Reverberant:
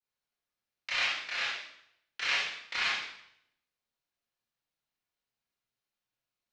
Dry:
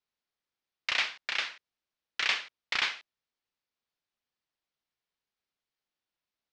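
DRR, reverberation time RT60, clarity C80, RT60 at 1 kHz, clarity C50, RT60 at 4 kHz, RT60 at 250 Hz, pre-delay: -9.0 dB, 0.75 s, 4.0 dB, 0.75 s, 0.0 dB, 0.70 s, 0.75 s, 21 ms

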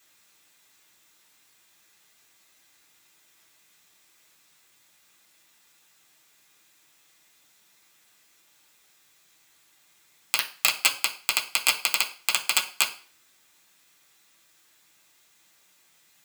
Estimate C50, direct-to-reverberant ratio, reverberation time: 12.5 dB, -2.5 dB, 0.40 s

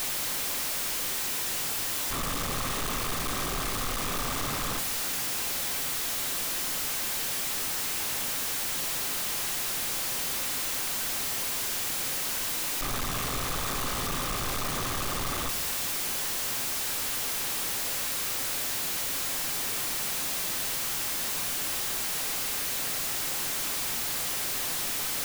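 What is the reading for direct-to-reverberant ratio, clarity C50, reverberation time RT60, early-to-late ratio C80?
11.5 dB, 17.5 dB, 0.50 s, 22.0 dB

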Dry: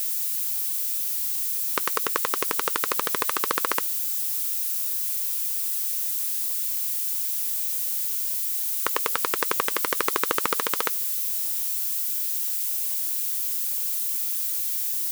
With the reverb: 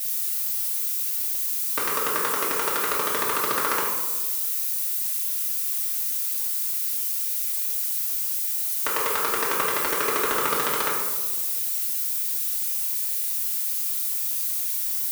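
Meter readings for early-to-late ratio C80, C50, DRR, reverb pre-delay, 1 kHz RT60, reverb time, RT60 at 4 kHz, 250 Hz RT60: 4.0 dB, 1.5 dB, -6.5 dB, 3 ms, 1.2 s, 1.3 s, 0.65 s, 1.5 s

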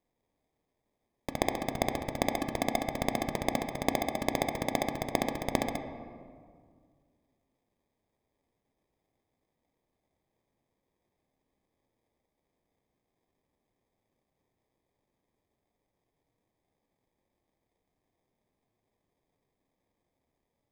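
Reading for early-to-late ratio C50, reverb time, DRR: 8.0 dB, 2.0 s, 6.5 dB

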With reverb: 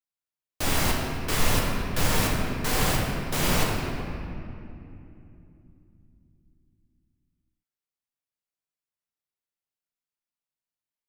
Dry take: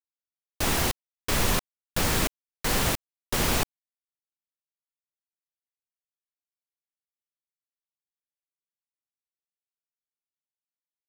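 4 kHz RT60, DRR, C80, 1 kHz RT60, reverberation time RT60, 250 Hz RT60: 1.7 s, -3.0 dB, 1.5 dB, 2.5 s, 2.8 s, 4.5 s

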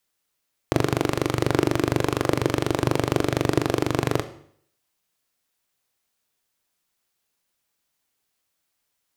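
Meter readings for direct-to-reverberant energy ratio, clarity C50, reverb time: 10.5 dB, 14.0 dB, 0.60 s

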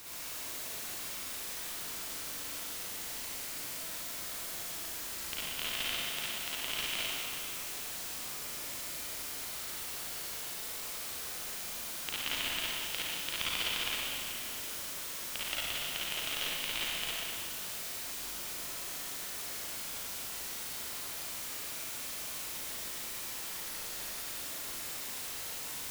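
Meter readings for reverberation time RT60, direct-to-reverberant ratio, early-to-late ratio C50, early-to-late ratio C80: 2.5 s, -9.0 dB, -7.5 dB, -2.5 dB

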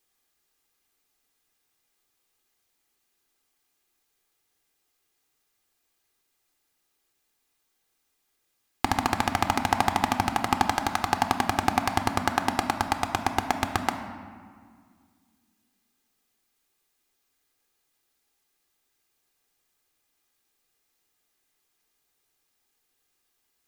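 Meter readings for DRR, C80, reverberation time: 6.5 dB, 9.5 dB, 1.9 s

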